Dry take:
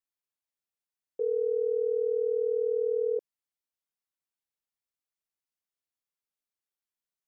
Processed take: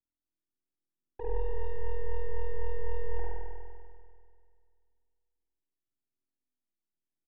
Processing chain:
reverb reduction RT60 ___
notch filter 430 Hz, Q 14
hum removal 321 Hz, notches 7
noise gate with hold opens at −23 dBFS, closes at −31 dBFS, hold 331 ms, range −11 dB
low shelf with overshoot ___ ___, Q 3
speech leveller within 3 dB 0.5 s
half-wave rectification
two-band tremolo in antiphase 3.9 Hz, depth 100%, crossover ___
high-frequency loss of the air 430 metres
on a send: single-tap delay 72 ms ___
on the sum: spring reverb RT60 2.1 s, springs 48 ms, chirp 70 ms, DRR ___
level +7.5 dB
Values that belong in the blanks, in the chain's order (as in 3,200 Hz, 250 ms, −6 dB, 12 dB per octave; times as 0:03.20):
0.59 s, 480 Hz, +13 dB, 460 Hz, −5.5 dB, −4.5 dB